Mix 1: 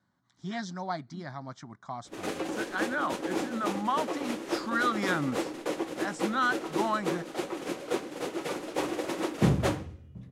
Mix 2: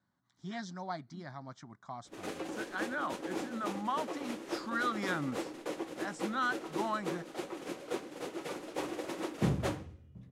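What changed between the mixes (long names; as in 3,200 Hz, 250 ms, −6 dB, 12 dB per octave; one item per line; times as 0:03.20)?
speech −5.5 dB
background −6.5 dB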